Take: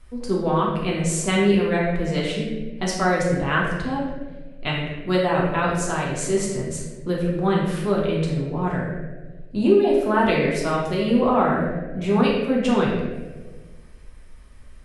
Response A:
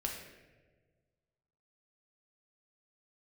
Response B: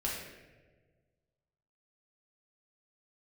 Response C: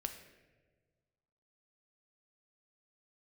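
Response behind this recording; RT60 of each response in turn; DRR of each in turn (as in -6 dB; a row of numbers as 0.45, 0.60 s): B; 1.5, 1.5, 1.5 s; 0.0, -4.5, 6.0 dB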